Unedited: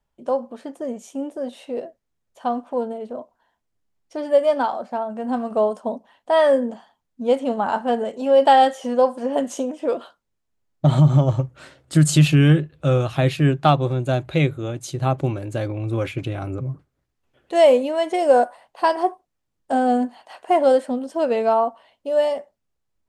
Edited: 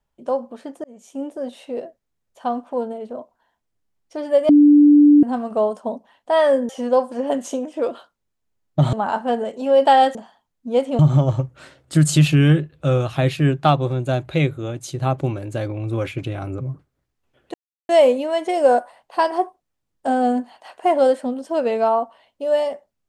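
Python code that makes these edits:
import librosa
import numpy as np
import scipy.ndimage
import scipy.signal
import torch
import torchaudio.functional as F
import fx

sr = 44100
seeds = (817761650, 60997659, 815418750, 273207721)

y = fx.edit(x, sr, fx.fade_in_span(start_s=0.84, length_s=0.38),
    fx.bleep(start_s=4.49, length_s=0.74, hz=293.0, db=-7.0),
    fx.swap(start_s=6.69, length_s=0.84, other_s=8.75, other_length_s=2.24),
    fx.insert_silence(at_s=17.54, length_s=0.35), tone=tone)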